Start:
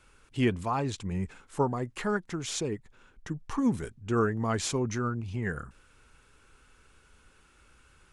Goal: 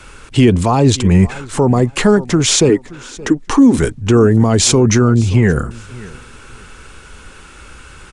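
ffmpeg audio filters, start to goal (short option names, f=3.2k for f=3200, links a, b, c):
-filter_complex "[0:a]asettb=1/sr,asplit=3[a][b][c];[a]atrim=end=2.694[d];[b]atrim=start=2.69:end=3.78,asetpts=PTS-STARTPTS,afade=t=in:d=0.004:c=qsin,afade=t=out:st=1.086:d=0.004:c=qsin,lowshelf=f=210:t=q:w=3:g=-7[e];[c]atrim=start=3.776[f];[d][e]acrossfade=d=0.004:c1=hsin:c2=qsin[g];[g][f]acrossfade=d=0.004:c1=qsin:c2=hsin,acrossover=split=380|760|2800[h][i][j][k];[j]acompressor=threshold=-46dB:ratio=6[l];[h][i][l][k]amix=inputs=4:normalize=0,aresample=22050,aresample=44100,aecho=1:1:573|1146:0.0794|0.0175,alimiter=level_in=23.5dB:limit=-1dB:release=50:level=0:latency=1,volume=-1dB"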